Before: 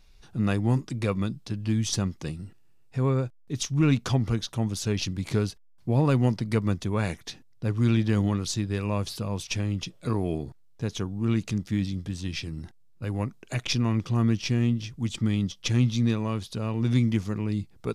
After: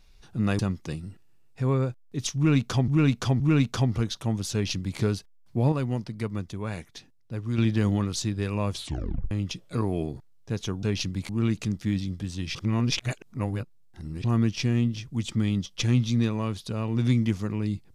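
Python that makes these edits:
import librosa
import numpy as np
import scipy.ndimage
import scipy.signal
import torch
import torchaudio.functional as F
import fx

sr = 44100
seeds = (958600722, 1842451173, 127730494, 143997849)

y = fx.edit(x, sr, fx.cut(start_s=0.59, length_s=1.36),
    fx.repeat(start_s=3.72, length_s=0.52, count=3),
    fx.duplicate(start_s=4.85, length_s=0.46, to_s=11.15),
    fx.clip_gain(start_s=6.04, length_s=1.86, db=-6.0),
    fx.tape_stop(start_s=9.05, length_s=0.58),
    fx.reverse_span(start_s=12.41, length_s=1.69), tone=tone)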